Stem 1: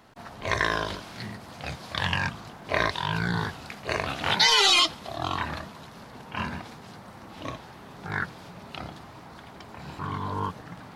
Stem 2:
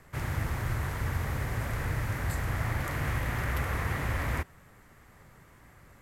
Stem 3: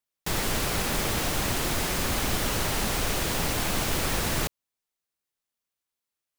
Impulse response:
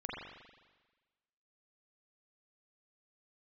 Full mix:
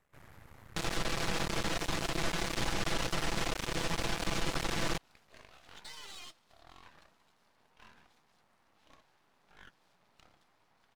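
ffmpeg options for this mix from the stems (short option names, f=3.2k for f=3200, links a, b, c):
-filter_complex "[0:a]adelay=1450,volume=-18.5dB[a];[1:a]tiltshelf=f=740:g=4,volume=-12dB[b];[2:a]lowpass=5.8k,aecho=1:1:6:0.69,adelay=500,volume=2.5dB[c];[a][b]amix=inputs=2:normalize=0,lowshelf=f=310:g=-12,acompressor=threshold=-52dB:ratio=1.5,volume=0dB[d];[c][d]amix=inputs=2:normalize=0,aeval=exprs='max(val(0),0)':c=same,alimiter=limit=-21dB:level=0:latency=1:release=100"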